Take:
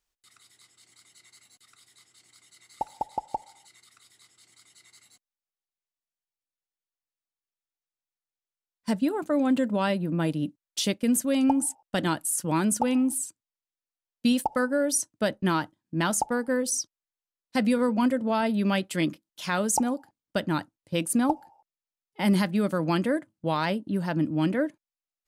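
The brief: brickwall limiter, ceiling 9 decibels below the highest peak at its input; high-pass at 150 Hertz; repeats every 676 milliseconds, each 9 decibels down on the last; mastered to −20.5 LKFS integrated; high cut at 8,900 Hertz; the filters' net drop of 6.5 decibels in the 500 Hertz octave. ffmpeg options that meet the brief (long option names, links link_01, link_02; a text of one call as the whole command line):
ffmpeg -i in.wav -af "highpass=150,lowpass=8900,equalizer=frequency=500:width_type=o:gain=-8,alimiter=limit=-21dB:level=0:latency=1,aecho=1:1:676|1352|2028|2704:0.355|0.124|0.0435|0.0152,volume=10.5dB" out.wav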